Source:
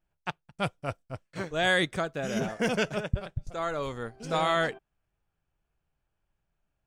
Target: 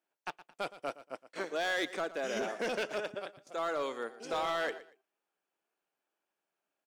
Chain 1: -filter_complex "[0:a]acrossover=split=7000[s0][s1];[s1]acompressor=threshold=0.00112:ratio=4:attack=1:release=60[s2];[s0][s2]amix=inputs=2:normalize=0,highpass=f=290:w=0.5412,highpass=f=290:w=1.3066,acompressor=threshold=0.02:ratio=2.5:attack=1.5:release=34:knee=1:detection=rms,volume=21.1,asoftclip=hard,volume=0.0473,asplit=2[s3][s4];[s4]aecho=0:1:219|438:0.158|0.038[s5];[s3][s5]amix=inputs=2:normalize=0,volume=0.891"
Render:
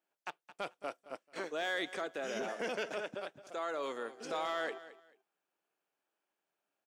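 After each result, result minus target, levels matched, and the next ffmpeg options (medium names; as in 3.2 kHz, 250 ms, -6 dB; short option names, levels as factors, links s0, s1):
echo 102 ms late; compression: peak gain reduction +4.5 dB
-filter_complex "[0:a]acrossover=split=7000[s0][s1];[s1]acompressor=threshold=0.00112:ratio=4:attack=1:release=60[s2];[s0][s2]amix=inputs=2:normalize=0,highpass=f=290:w=0.5412,highpass=f=290:w=1.3066,acompressor=threshold=0.02:ratio=2.5:attack=1.5:release=34:knee=1:detection=rms,volume=21.1,asoftclip=hard,volume=0.0473,asplit=2[s3][s4];[s4]aecho=0:1:117|234:0.158|0.038[s5];[s3][s5]amix=inputs=2:normalize=0,volume=0.891"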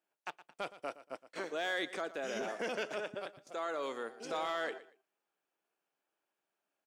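compression: peak gain reduction +4.5 dB
-filter_complex "[0:a]acrossover=split=7000[s0][s1];[s1]acompressor=threshold=0.00112:ratio=4:attack=1:release=60[s2];[s0][s2]amix=inputs=2:normalize=0,highpass=f=290:w=0.5412,highpass=f=290:w=1.3066,acompressor=threshold=0.0473:ratio=2.5:attack=1.5:release=34:knee=1:detection=rms,volume=21.1,asoftclip=hard,volume=0.0473,asplit=2[s3][s4];[s4]aecho=0:1:117|234:0.158|0.038[s5];[s3][s5]amix=inputs=2:normalize=0,volume=0.891"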